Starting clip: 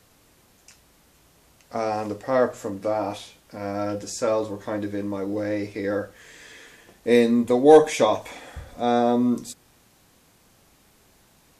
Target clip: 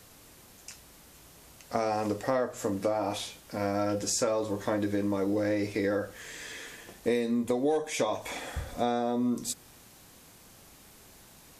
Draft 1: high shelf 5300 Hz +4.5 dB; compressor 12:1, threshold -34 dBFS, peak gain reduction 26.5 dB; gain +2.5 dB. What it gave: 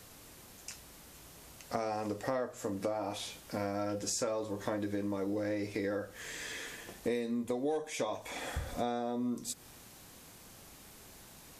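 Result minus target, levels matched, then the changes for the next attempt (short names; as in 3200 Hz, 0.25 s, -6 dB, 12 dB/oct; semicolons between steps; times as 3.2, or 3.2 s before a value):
compressor: peak gain reduction +6.5 dB
change: compressor 12:1, threshold -27 dBFS, peak gain reduction 20 dB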